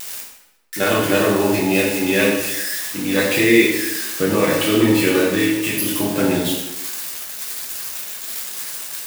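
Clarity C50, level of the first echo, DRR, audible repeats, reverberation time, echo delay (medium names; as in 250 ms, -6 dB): 2.5 dB, no echo, -5.0 dB, no echo, 1.0 s, no echo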